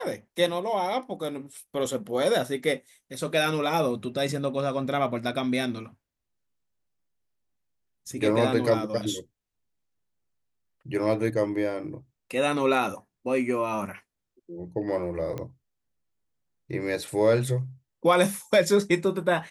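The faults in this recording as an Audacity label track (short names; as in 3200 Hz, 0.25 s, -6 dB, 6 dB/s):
15.380000	15.380000	pop -21 dBFS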